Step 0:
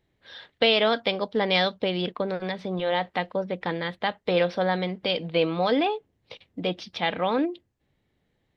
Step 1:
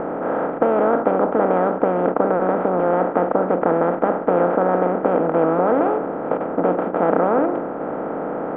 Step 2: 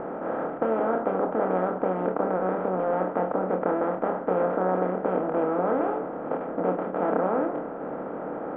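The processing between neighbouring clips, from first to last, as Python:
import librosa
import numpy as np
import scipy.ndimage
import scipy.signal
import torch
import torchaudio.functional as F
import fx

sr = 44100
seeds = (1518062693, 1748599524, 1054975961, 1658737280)

y1 = fx.bin_compress(x, sr, power=0.2)
y1 = scipy.signal.sosfilt(scipy.signal.cheby1(4, 1.0, 1400.0, 'lowpass', fs=sr, output='sos'), y1)
y2 = fx.doubler(y1, sr, ms=27.0, db=-5.5)
y2 = y2 * 10.0 ** (-8.5 / 20.0)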